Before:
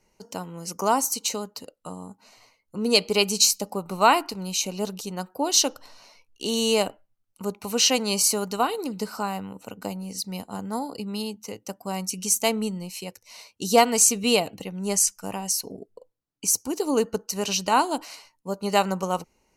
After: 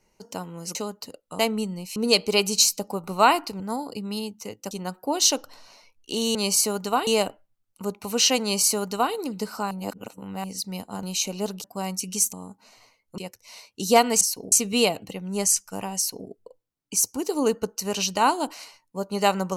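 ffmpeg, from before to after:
-filter_complex "[0:a]asplit=16[s0][s1][s2][s3][s4][s5][s6][s7][s8][s9][s10][s11][s12][s13][s14][s15];[s0]atrim=end=0.752[s16];[s1]atrim=start=1.288:end=1.932[s17];[s2]atrim=start=12.428:end=13.002[s18];[s3]atrim=start=2.778:end=4.422[s19];[s4]atrim=start=10.628:end=11.742[s20];[s5]atrim=start=5.028:end=6.672[s21];[s6]atrim=start=8.018:end=8.742[s22];[s7]atrim=start=6.668:end=9.312[s23];[s8]atrim=start=9.308:end=10.042,asetpts=PTS-STARTPTS,areverse[s24];[s9]atrim=start=10.038:end=10.632[s25];[s10]atrim=start=4.418:end=5.032[s26];[s11]atrim=start=11.738:end=12.432[s27];[s12]atrim=start=1.928:end=2.782[s28];[s13]atrim=start=12.998:end=14.032[s29];[s14]atrim=start=15.478:end=15.792[s30];[s15]atrim=start=14.028[s31];[s16][s17]acrossfade=d=0.004:c1=hsin:c2=hsin[s32];[s32][s18]acrossfade=d=0.004:c1=hsin:c2=hsin[s33];[s33][s19]acrossfade=d=0.004:c1=hsin:c2=hsin[s34];[s34][s20]acrossfade=d=0.004:c1=hsin:c2=hsin[s35];[s35][s21]acrossfade=d=0.004:c1=hsin:c2=hsin[s36];[s36][s22]acrossfade=d=0.004:c1=hsin:c2=hsin[s37];[s37][s23]acrossfade=d=0.004:c1=hsin:c2=hsin[s38];[s38][s24]acrossfade=d=0.004:c1=hsin:c2=hsin[s39];[s39][s25]acrossfade=d=0.004:c1=hsin:c2=hsin[s40];[s40][s26]acrossfade=d=0.004:c1=hsin:c2=hsin[s41];[s41][s27]acrossfade=d=0.004:c1=hsin:c2=hsin[s42];[s42][s28]acrossfade=d=0.004:c1=hsin:c2=hsin[s43];[s43][s29]acrossfade=d=0.004:c1=hsin:c2=hsin[s44];[s44][s30]acrossfade=d=0.004:c1=hsin:c2=hsin[s45];[s45][s31]acrossfade=d=0.004:c1=hsin:c2=hsin"

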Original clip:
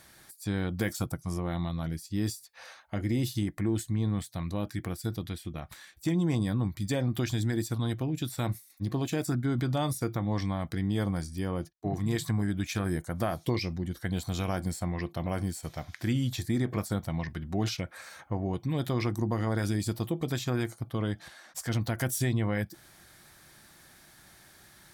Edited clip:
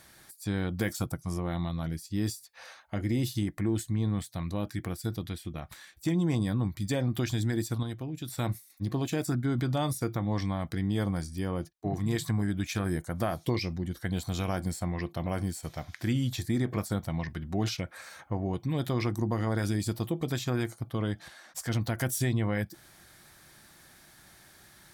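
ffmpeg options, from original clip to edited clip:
-filter_complex "[0:a]asplit=3[s0][s1][s2];[s0]atrim=end=7.832[s3];[s1]atrim=start=7.828:end=8.282,asetpts=PTS-STARTPTS,volume=0.531[s4];[s2]atrim=start=8.278[s5];[s3][s4]acrossfade=d=0.004:c1=hsin:c2=hsin[s6];[s6][s5]acrossfade=d=0.004:c1=hsin:c2=hsin"

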